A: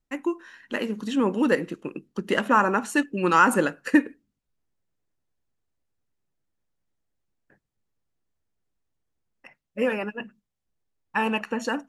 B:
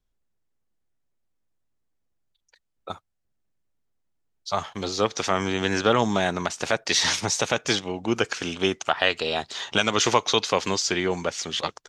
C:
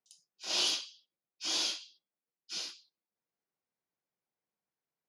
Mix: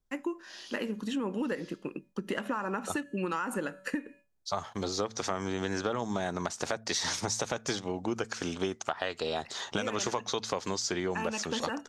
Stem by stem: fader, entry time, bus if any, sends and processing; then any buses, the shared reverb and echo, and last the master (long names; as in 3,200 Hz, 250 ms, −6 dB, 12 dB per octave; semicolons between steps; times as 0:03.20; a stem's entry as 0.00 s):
+0.5 dB, 0.00 s, bus A, no send, tuned comb filter 190 Hz, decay 0.7 s, harmonics odd, mix 40%
−1.5 dB, 0.00 s, no bus, no send, parametric band 2,700 Hz −8 dB 1 octave; hum removal 111 Hz, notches 2
−8.0 dB, 0.00 s, bus A, no send, automatic ducking −16 dB, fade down 0.95 s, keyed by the first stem
bus A: 0.0 dB, noise gate with hold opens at −46 dBFS; downward compressor, threshold −26 dBFS, peak gain reduction 10 dB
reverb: not used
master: downward compressor 6 to 1, threshold −28 dBFS, peak gain reduction 12.5 dB